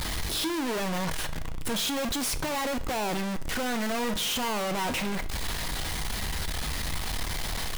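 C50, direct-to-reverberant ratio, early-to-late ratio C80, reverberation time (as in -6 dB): 16.0 dB, 9.5 dB, 19.5 dB, 0.50 s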